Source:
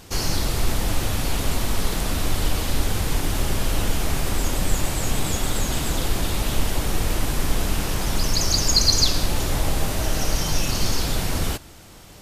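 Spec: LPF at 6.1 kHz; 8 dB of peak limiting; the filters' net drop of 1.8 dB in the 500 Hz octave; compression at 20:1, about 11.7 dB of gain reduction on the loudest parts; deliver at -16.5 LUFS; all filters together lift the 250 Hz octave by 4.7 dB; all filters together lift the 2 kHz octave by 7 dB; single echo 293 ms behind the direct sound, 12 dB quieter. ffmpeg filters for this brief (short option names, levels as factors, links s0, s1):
-af "lowpass=6100,equalizer=f=250:t=o:g=7.5,equalizer=f=500:t=o:g=-5.5,equalizer=f=2000:t=o:g=9,acompressor=threshold=0.0562:ratio=20,alimiter=limit=0.0708:level=0:latency=1,aecho=1:1:293:0.251,volume=7.94"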